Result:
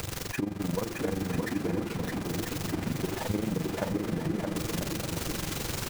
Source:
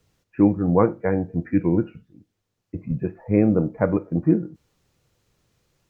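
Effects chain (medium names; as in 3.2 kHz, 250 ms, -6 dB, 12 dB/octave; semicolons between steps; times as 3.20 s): jump at every zero crossing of -21.5 dBFS; compression 6:1, threshold -21 dBFS, peak gain reduction 10.5 dB; AM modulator 23 Hz, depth 75%; mains buzz 400 Hz, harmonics 6, -54 dBFS -3 dB/octave; bouncing-ball echo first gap 620 ms, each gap 0.6×, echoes 5; trim -4.5 dB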